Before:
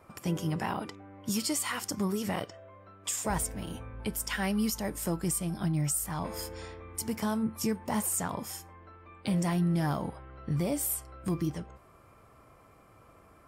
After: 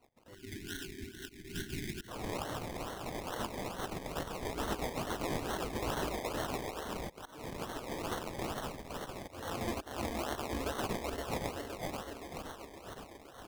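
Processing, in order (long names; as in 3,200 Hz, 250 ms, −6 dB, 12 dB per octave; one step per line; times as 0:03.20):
feedback delay that plays each chunk backwards 259 ms, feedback 80%, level −1.5 dB
volume swells 273 ms
parametric band 120 Hz +14 dB 1.6 octaves
reversed playback
upward compression, threshold −38 dBFS
reversed playback
gate on every frequency bin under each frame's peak −20 dB weak
sample-and-hold swept by an LFO 25×, swing 60% 2.3 Hz
gain on a spectral selection 0:00.34–0:02.08, 420–1,400 Hz −28 dB
level −3.5 dB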